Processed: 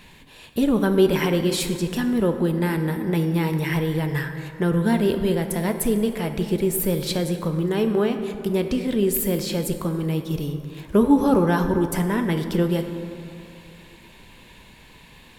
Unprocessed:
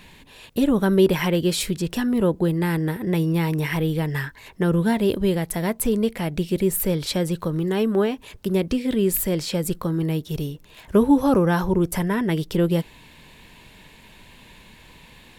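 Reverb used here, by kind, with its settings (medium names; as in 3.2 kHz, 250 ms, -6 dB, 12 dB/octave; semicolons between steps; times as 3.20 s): plate-style reverb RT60 2.7 s, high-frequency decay 0.45×, DRR 6.5 dB; trim -1 dB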